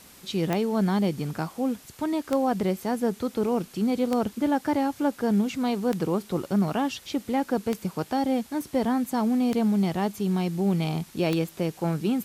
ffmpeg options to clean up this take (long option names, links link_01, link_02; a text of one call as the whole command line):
ffmpeg -i in.wav -af "adeclick=threshold=4,afwtdn=0.0032" out.wav